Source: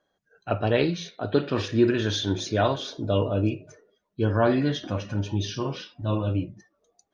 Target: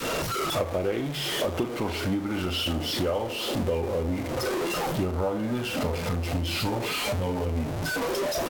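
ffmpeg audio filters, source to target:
-filter_complex "[0:a]aeval=exprs='val(0)+0.5*0.0531*sgn(val(0))':c=same,adynamicequalizer=threshold=0.0141:dfrequency=740:dqfactor=1.1:tfrequency=740:tqfactor=1.1:attack=5:release=100:ratio=0.375:range=4:mode=boostabove:tftype=bell,acompressor=threshold=-28dB:ratio=6,asetrate=37044,aresample=44100,asplit=2[a][b];[b]adelay=38,volume=-12dB[c];[a][c]amix=inputs=2:normalize=0,volume=2.5dB"

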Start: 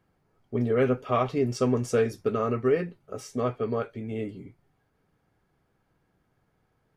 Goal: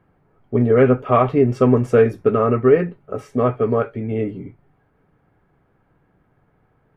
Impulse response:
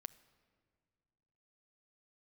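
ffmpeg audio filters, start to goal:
-filter_complex "[0:a]asplit=2[a][b];[1:a]atrim=start_sample=2205,atrim=end_sample=3087,lowpass=2.4k[c];[b][c]afir=irnorm=-1:irlink=0,volume=17dB[d];[a][d]amix=inputs=2:normalize=0,volume=-4dB"

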